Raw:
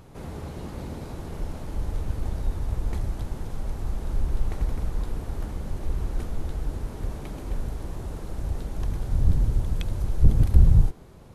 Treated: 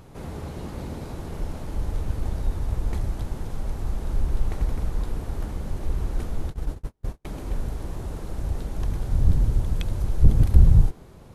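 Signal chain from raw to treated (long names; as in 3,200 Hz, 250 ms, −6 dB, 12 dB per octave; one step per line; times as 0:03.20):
0:06.50–0:07.25: noise gate −27 dBFS, range −42 dB
level +1.5 dB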